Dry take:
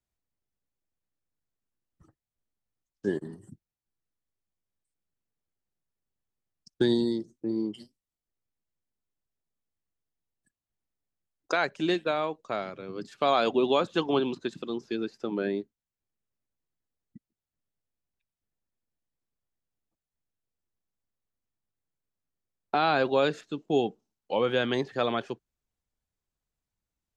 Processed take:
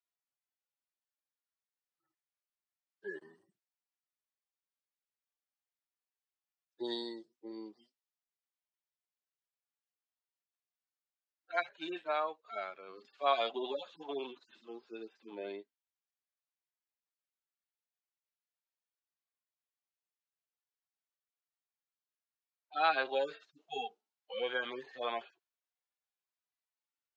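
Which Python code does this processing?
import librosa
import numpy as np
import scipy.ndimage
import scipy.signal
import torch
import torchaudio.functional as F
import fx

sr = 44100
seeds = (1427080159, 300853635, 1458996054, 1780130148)

y = fx.hpss_only(x, sr, part='harmonic')
y = fx.bandpass_edges(y, sr, low_hz=800.0, high_hz=5200.0)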